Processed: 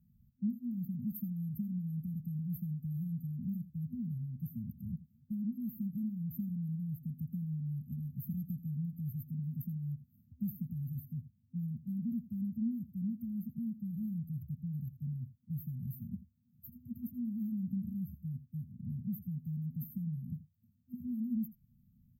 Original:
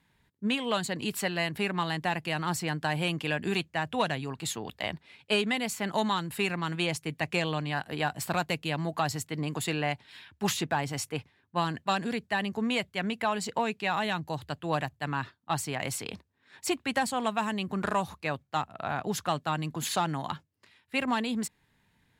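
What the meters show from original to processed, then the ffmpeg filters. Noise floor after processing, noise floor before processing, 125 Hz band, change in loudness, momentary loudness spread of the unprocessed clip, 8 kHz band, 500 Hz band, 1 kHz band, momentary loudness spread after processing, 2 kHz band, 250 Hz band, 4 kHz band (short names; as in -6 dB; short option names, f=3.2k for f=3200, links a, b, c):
-70 dBFS, -71 dBFS, -1.0 dB, -8.5 dB, 6 LU, under -40 dB, under -40 dB, under -40 dB, 7 LU, under -40 dB, -3.0 dB, under -40 dB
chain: -filter_complex "[0:a]acrossover=split=290|3200[a][b][c];[a]acompressor=threshold=-42dB:ratio=4[d];[b]acompressor=threshold=-43dB:ratio=4[e];[c]acompressor=threshold=-40dB:ratio=4[f];[d][e][f]amix=inputs=3:normalize=0,afftfilt=real='re*(1-between(b*sr/4096,250,12000))':imag='im*(1-between(b*sr/4096,250,12000))':win_size=4096:overlap=0.75,asplit=2[g][h];[h]aecho=0:1:82:0.158[i];[g][i]amix=inputs=2:normalize=0,afftfilt=real='re*eq(mod(floor(b*sr/1024/260),2),0)':imag='im*eq(mod(floor(b*sr/1024/260),2),0)':win_size=1024:overlap=0.75,volume=5.5dB"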